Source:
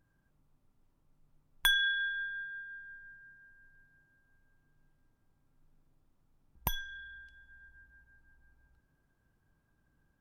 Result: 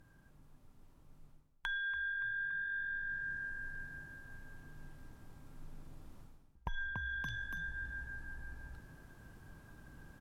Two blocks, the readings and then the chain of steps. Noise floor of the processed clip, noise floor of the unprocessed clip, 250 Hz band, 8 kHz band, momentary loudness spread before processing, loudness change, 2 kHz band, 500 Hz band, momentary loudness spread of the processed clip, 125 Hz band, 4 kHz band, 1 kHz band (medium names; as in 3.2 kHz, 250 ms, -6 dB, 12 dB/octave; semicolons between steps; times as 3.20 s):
-65 dBFS, -75 dBFS, +4.0 dB, under -15 dB, 22 LU, -7.5 dB, -1.0 dB, -0.5 dB, 21 LU, +4.0 dB, -16.0 dB, -4.5 dB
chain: frequency-shifting echo 285 ms, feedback 36%, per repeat +48 Hz, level -17 dB; gain riding within 4 dB 0.5 s; low-pass that closes with the level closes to 1.6 kHz, closed at -36 dBFS; reverse; compression 6:1, threshold -52 dBFS, peak gain reduction 25.5 dB; reverse; trim +14 dB